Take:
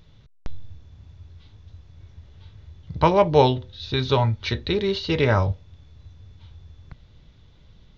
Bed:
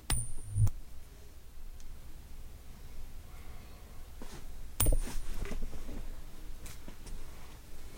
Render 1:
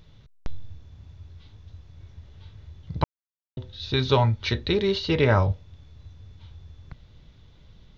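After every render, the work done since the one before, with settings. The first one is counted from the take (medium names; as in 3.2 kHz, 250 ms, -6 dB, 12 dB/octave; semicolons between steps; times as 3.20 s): 3.04–3.57 s: mute; 5.09–5.50 s: distance through air 81 m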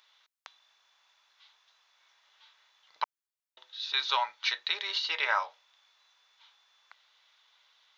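high-pass 920 Hz 24 dB/octave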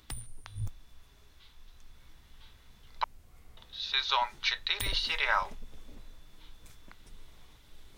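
add bed -8.5 dB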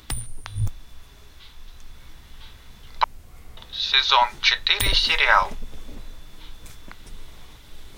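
trim +11.5 dB; peak limiter -3 dBFS, peak gain reduction 1.5 dB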